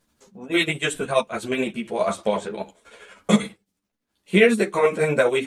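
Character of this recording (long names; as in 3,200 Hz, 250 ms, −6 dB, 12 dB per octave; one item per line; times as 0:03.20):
tremolo triangle 12 Hz, depth 55%
a shimmering, thickened sound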